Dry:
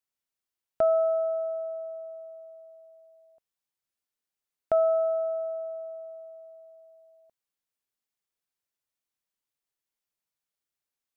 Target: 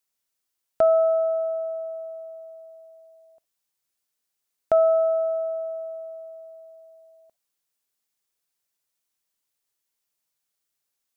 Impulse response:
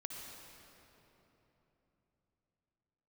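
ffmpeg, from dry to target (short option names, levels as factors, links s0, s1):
-filter_complex "[0:a]bass=f=250:g=-2,treble=f=4000:g=5,asplit=2[s0][s1];[1:a]atrim=start_sample=2205,atrim=end_sample=3087[s2];[s1][s2]afir=irnorm=-1:irlink=0,volume=0.75[s3];[s0][s3]amix=inputs=2:normalize=0,volume=1.19"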